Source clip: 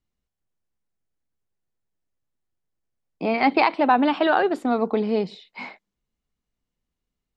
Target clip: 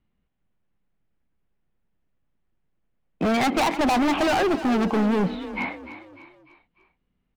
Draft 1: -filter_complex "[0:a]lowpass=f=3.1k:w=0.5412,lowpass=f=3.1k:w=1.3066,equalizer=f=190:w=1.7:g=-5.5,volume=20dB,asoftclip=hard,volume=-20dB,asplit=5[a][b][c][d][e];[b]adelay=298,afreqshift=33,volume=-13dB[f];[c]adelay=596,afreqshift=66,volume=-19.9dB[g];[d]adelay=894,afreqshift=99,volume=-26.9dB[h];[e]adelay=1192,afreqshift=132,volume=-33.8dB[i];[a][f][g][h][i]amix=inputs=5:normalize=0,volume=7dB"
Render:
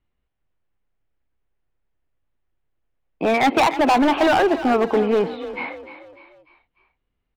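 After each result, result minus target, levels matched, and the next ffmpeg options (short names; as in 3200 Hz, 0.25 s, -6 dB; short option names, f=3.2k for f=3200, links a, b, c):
250 Hz band -3.0 dB; overloaded stage: distortion -4 dB
-filter_complex "[0:a]lowpass=f=3.1k:w=0.5412,lowpass=f=3.1k:w=1.3066,equalizer=f=190:w=1.7:g=6,volume=20dB,asoftclip=hard,volume=-20dB,asplit=5[a][b][c][d][e];[b]adelay=298,afreqshift=33,volume=-13dB[f];[c]adelay=596,afreqshift=66,volume=-19.9dB[g];[d]adelay=894,afreqshift=99,volume=-26.9dB[h];[e]adelay=1192,afreqshift=132,volume=-33.8dB[i];[a][f][g][h][i]amix=inputs=5:normalize=0,volume=7dB"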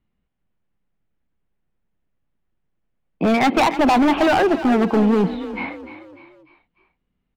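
overloaded stage: distortion -3 dB
-filter_complex "[0:a]lowpass=f=3.1k:w=0.5412,lowpass=f=3.1k:w=1.3066,equalizer=f=190:w=1.7:g=6,volume=26.5dB,asoftclip=hard,volume=-26.5dB,asplit=5[a][b][c][d][e];[b]adelay=298,afreqshift=33,volume=-13dB[f];[c]adelay=596,afreqshift=66,volume=-19.9dB[g];[d]adelay=894,afreqshift=99,volume=-26.9dB[h];[e]adelay=1192,afreqshift=132,volume=-33.8dB[i];[a][f][g][h][i]amix=inputs=5:normalize=0,volume=7dB"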